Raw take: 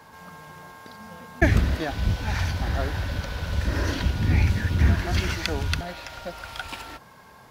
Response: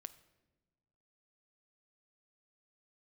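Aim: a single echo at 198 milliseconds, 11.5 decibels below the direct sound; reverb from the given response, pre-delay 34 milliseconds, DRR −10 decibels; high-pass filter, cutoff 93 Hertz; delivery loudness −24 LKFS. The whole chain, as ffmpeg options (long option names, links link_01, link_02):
-filter_complex "[0:a]highpass=93,aecho=1:1:198:0.266,asplit=2[link_01][link_02];[1:a]atrim=start_sample=2205,adelay=34[link_03];[link_02][link_03]afir=irnorm=-1:irlink=0,volume=15.5dB[link_04];[link_01][link_04]amix=inputs=2:normalize=0,volume=-6.5dB"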